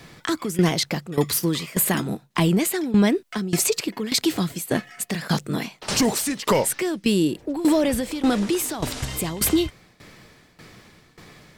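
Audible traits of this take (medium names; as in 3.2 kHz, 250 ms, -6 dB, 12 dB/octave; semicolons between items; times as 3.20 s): a quantiser's noise floor 12-bit, dither triangular; tremolo saw down 1.7 Hz, depth 85%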